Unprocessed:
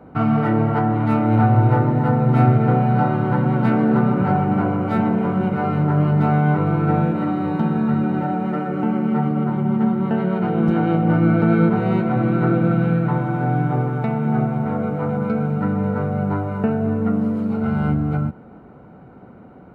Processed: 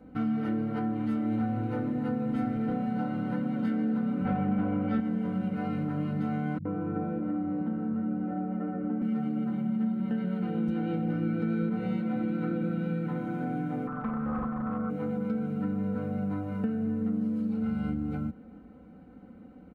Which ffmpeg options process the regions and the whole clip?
ffmpeg -i in.wav -filter_complex "[0:a]asettb=1/sr,asplit=3[link_01][link_02][link_03];[link_01]atrim=end=4.254[link_04];[link_02]atrim=start=4.25:end=5,asetpts=PTS-STARTPTS,afade=type=in:duration=0.004:curve=qsin,afade=type=out:start_time=0.746:duration=0.004:curve=qsin,lowpass=2800,bandreject=frequency=60:width_type=h:width=6,bandreject=frequency=120:width_type=h:width=6,bandreject=frequency=180:width_type=h:width=6,bandreject=frequency=240:width_type=h:width=6,bandreject=frequency=300:width_type=h:width=6,bandreject=frequency=360:width_type=h:width=6,bandreject=frequency=420:width_type=h:width=6,bandreject=frequency=480:width_type=h:width=6,acontrast=87[link_05];[link_03]atrim=start=4.996[link_06];[link_04][link_05]acrossfade=duration=0.004:curve1=hsin:curve2=qsin[link_07];[link_07][link_06]acrossfade=duration=0.004:curve1=qsin:curve2=hsin,asettb=1/sr,asplit=3[link_08][link_09][link_10];[link_08]atrim=end=6.584[link_11];[link_09]atrim=start=6.58:end=9.02,asetpts=PTS-STARTPTS,afade=type=in:duration=0.004:curve=qsin,afade=type=out:start_time=2.436:duration=0.004:curve=qsin,lowpass=1300,acrossover=split=160[link_12][link_13];[link_13]adelay=70[link_14];[link_12][link_14]amix=inputs=2:normalize=0,atrim=end_sample=107604[link_15];[link_10]atrim=start=9.016[link_16];[link_11][link_15]acrossfade=duration=0.004:curve1=hsin:curve2=qsin[link_17];[link_17][link_16]acrossfade=duration=0.004:curve1=qsin:curve2=hsin,asettb=1/sr,asplit=3[link_18][link_19][link_20];[link_18]atrim=end=13.874[link_21];[link_19]atrim=start=13.87:end=14.9,asetpts=PTS-STARTPTS,afade=type=in:duration=0.004:curve=qsin,afade=type=out:start_time=1.026:duration=0.004:curve=qsin,equalizer=frequency=360:width_type=o:width=0.74:gain=-9,aeval=exprs='0.133*(abs(mod(val(0)/0.133+3,4)-2)-1)':channel_layout=same,lowpass=frequency=1200:width_type=q:width=6.9[link_22];[link_20]atrim=start=14.896[link_23];[link_21][link_22]acrossfade=duration=0.004:curve1=hsin:curve2=qsin[link_24];[link_24][link_23]acrossfade=duration=0.004:curve1=qsin:curve2=hsin,equalizer=frequency=930:width=0.7:gain=-11.5,aecho=1:1:3.9:0.86,acompressor=threshold=-22dB:ratio=2.5,volume=-6.5dB" out.wav

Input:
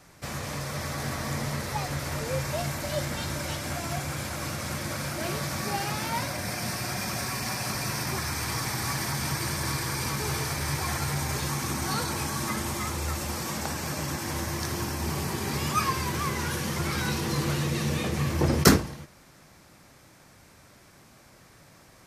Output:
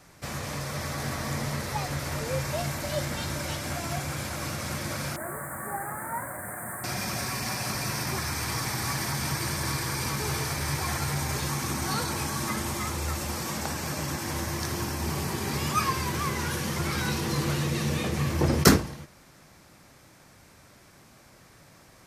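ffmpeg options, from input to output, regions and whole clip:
ffmpeg -i in.wav -filter_complex "[0:a]asettb=1/sr,asplit=3[link_01][link_02][link_03];[link_01]atrim=end=5.164[link_04];[link_02]atrim=start=5.16:end=6.84,asetpts=PTS-STARTPTS,afade=type=in:duration=0.004:curve=qsin,afade=type=out:start_time=1.676:duration=0.004:curve=qsin,lowshelf=frequency=440:gain=-10,acrusher=bits=8:dc=4:mix=0:aa=0.000001,asuperstop=centerf=4000:order=12:qfactor=0.66[link_05];[link_03]atrim=start=6.836[link_06];[link_04][link_05]acrossfade=duration=0.004:curve1=hsin:curve2=qsin[link_07];[link_07][link_06]acrossfade=duration=0.004:curve1=qsin:curve2=hsin" out.wav

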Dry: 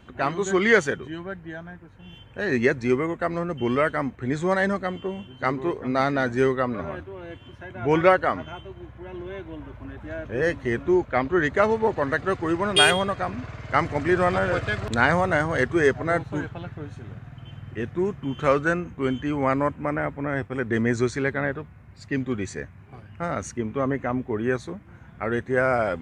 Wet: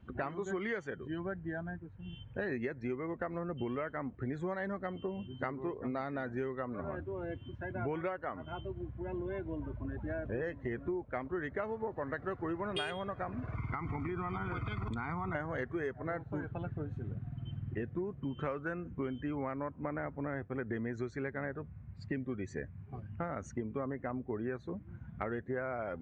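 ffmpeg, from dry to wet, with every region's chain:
ffmpeg -i in.wav -filter_complex "[0:a]asettb=1/sr,asplit=3[link_01][link_02][link_03];[link_01]atrim=end=13.554[link_04];[link_02]atrim=start=13.55:end=15.35,asetpts=PTS-STARTPTS,afade=type=in:duration=0.004:curve=qsin,afade=type=out:start_time=1.796:duration=0.004:curve=qsin,aecho=1:1:0.9:0.94,atrim=end_sample=79380,acompressor=threshold=-24dB:ratio=10:attack=3.2:release=140:knee=1:detection=peak[link_05];[link_03]atrim=start=15.346[link_06];[link_04][link_05]acrossfade=duration=0.004:curve1=hsin:curve2=qsin[link_07];[link_07][link_06]acrossfade=duration=0.004:curve1=qsin:curve2=hsin,afftdn=noise_reduction=13:noise_floor=-41,lowpass=frequency=2300:poles=1,acompressor=threshold=-34dB:ratio=10" out.wav

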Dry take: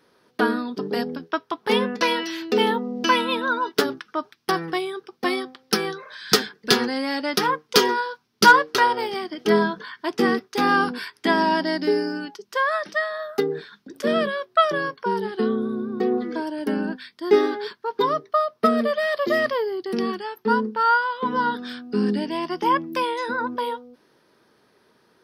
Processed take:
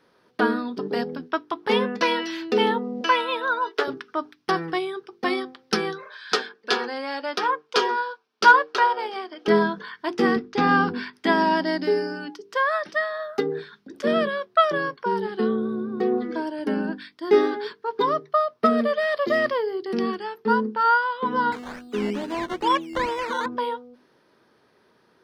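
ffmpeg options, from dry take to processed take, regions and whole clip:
ffmpeg -i in.wav -filter_complex "[0:a]asettb=1/sr,asplit=3[link_01][link_02][link_03];[link_01]atrim=end=3.014[link_04];[link_02]atrim=start=3.01:end=3.88,asetpts=PTS-STARTPTS,afade=type=in:duration=0.004:curve=qsin,afade=type=out:start_time=0.866:duration=0.004:curve=qsin,highpass=frequency=400:width=0.5412,highpass=frequency=400:width=1.3066,acrossover=split=3600[link_05][link_06];[link_06]acompressor=threshold=-35dB:ratio=4:attack=1:release=60[link_07];[link_05][link_07]amix=inputs=2:normalize=0[link_08];[link_03]atrim=start=3.876[link_09];[link_04][link_08]acrossfade=duration=0.004:curve1=hsin:curve2=qsin[link_10];[link_10][link_09]acrossfade=duration=0.004:curve1=qsin:curve2=hsin,asettb=1/sr,asplit=3[link_11][link_12][link_13];[link_11]atrim=end=6.084[link_14];[link_12]atrim=start=6.08:end=9.48,asetpts=PTS-STARTPTS,afade=type=in:duration=0.004:curve=qsin,afade=type=out:start_time=3.396:duration=0.004:curve=qsin,highpass=480,aemphasis=mode=reproduction:type=cd,bandreject=frequency=2000:width=10[link_15];[link_13]atrim=start=9.476[link_16];[link_14][link_15]acrossfade=duration=0.004:curve1=hsin:curve2=qsin[link_17];[link_17][link_16]acrossfade=duration=0.004:curve1=qsin:curve2=hsin,asettb=1/sr,asplit=3[link_18][link_19][link_20];[link_18]atrim=end=10.364[link_21];[link_19]atrim=start=10.36:end=11.13,asetpts=PTS-STARTPTS,afade=type=in:duration=0.004:curve=qsin,afade=type=out:start_time=0.766:duration=0.004:curve=qsin,lowpass=frequency=6400:width=0.5412,lowpass=frequency=6400:width=1.3066,bass=frequency=250:gain=9,treble=frequency=4000:gain=-3[link_22];[link_20]atrim=start=11.126[link_23];[link_21][link_22]acrossfade=duration=0.004:curve1=hsin:curve2=qsin[link_24];[link_24][link_23]acrossfade=duration=0.004:curve1=qsin:curve2=hsin,asettb=1/sr,asplit=3[link_25][link_26][link_27];[link_25]atrim=end=21.524[link_28];[link_26]atrim=start=21.52:end=23.46,asetpts=PTS-STARTPTS,afade=type=in:duration=0.004:curve=qsin,afade=type=out:start_time=1.936:duration=0.004:curve=qsin,highpass=260,acrusher=samples=14:mix=1:aa=0.000001:lfo=1:lforange=8.4:lforate=2.3,acrossover=split=4200[link_29][link_30];[link_30]acompressor=threshold=-39dB:ratio=4:attack=1:release=60[link_31];[link_29][link_31]amix=inputs=2:normalize=0[link_32];[link_27]atrim=start=23.456[link_33];[link_28][link_32]acrossfade=duration=0.004:curve1=hsin:curve2=qsin[link_34];[link_34][link_33]acrossfade=duration=0.004:curve1=qsin:curve2=hsin,acrossover=split=9800[link_35][link_36];[link_36]acompressor=threshold=-55dB:ratio=4:attack=1:release=60[link_37];[link_35][link_37]amix=inputs=2:normalize=0,highshelf=frequency=5900:gain=-8.5,bandreject=frequency=50:width_type=h:width=6,bandreject=frequency=100:width_type=h:width=6,bandreject=frequency=150:width_type=h:width=6,bandreject=frequency=200:width_type=h:width=6,bandreject=frequency=250:width_type=h:width=6,bandreject=frequency=300:width_type=h:width=6,bandreject=frequency=350:width_type=h:width=6,bandreject=frequency=400:width_type=h:width=6,bandreject=frequency=450:width_type=h:width=6" out.wav

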